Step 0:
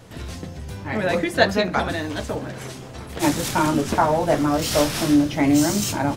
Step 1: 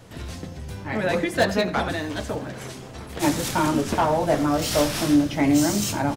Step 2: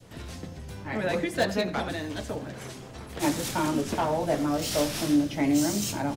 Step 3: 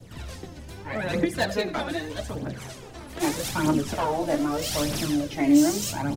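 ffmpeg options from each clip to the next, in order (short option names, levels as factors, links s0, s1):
-filter_complex "[0:a]acrossover=split=670[s0][s1];[s1]asoftclip=type=hard:threshold=0.126[s2];[s0][s2]amix=inputs=2:normalize=0,asplit=2[s3][s4];[s4]adelay=87.46,volume=0.158,highshelf=f=4000:g=-1.97[s5];[s3][s5]amix=inputs=2:normalize=0,volume=0.841"
-filter_complex "[0:a]adynamicequalizer=threshold=0.0126:dfrequency=1200:dqfactor=0.95:tfrequency=1200:tqfactor=0.95:attack=5:release=100:ratio=0.375:range=2:mode=cutabove:tftype=bell,acrossover=split=150|2800[s0][s1][s2];[s0]alimiter=level_in=2.82:limit=0.0631:level=0:latency=1,volume=0.355[s3];[s3][s1][s2]amix=inputs=3:normalize=0,volume=0.631"
-af "aphaser=in_gain=1:out_gain=1:delay=3.6:decay=0.56:speed=0.81:type=triangular"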